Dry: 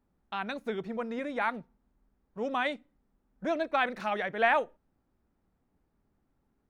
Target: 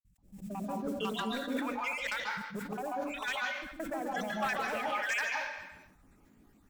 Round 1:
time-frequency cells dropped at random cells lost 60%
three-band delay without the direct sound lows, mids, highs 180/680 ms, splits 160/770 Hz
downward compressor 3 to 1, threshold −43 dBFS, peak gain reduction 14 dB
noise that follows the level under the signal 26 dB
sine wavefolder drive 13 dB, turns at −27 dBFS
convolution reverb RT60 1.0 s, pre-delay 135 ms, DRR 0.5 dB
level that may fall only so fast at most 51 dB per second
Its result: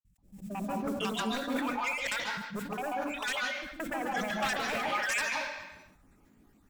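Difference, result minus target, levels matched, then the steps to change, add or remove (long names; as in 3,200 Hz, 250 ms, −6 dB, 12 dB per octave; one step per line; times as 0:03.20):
downward compressor: peak gain reduction −4.5 dB
change: downward compressor 3 to 1, threshold −50 dBFS, peak gain reduction 18.5 dB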